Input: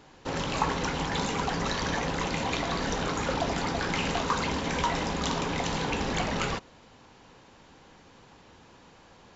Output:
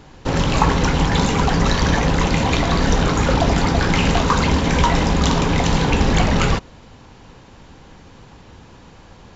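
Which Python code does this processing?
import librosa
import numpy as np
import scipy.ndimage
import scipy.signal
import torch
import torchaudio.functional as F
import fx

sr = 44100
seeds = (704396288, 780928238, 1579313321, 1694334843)

p1 = fx.low_shelf(x, sr, hz=160.0, db=12.0)
p2 = np.sign(p1) * np.maximum(np.abs(p1) - 10.0 ** (-43.5 / 20.0), 0.0)
p3 = p1 + (p2 * 10.0 ** (-10.5 / 20.0))
y = p3 * 10.0 ** (7.0 / 20.0)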